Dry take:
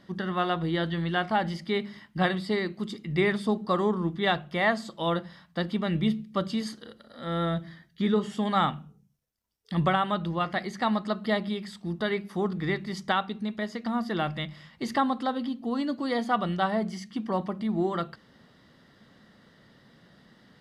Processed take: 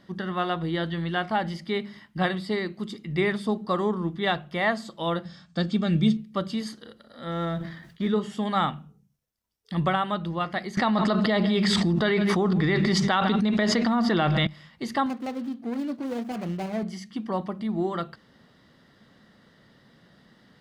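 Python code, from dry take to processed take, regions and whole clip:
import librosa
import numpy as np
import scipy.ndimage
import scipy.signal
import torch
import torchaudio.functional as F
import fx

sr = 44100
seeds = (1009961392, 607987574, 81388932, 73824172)

y = fx.chain(x, sr, fx.steep_lowpass(hz=8200.0, slope=48),
    fx.bass_treble(bass_db=8, treble_db=12),
    fx.notch_comb(f0_hz=990.0), at=(5.25, 6.17))
y = fx.chain(y, sr, fx.law_mismatch(coded='A'),
    fx.lowpass(hz=4000.0, slope=6),
    fx.sustainer(db_per_s=67.0), at=(7.31, 8.08))
y = fx.chain(y, sr, fx.lowpass(hz=7000.0, slope=12),
    fx.echo_single(ms=155, db=-20.5),
    fx.env_flatten(amount_pct=100), at=(10.77, 14.47))
y = fx.chain(y, sr, fx.median_filter(points=41),
    fx.highpass(hz=78.0, slope=12), at=(15.06, 16.83))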